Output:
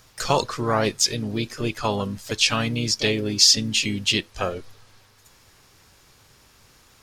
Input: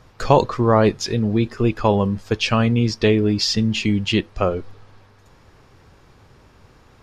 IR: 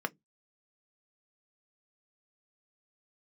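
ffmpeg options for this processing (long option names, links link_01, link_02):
-filter_complex "[0:a]asplit=2[link_01][link_02];[link_02]asetrate=55563,aresample=44100,atempo=0.793701,volume=-10dB[link_03];[link_01][link_03]amix=inputs=2:normalize=0,crystalizer=i=7.5:c=0,volume=-9dB"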